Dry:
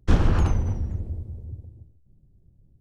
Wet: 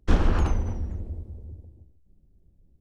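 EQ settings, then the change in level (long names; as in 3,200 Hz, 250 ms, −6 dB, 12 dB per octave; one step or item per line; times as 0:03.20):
parametric band 120 Hz −11 dB 0.74 octaves
high-shelf EQ 5,800 Hz −3.5 dB
0.0 dB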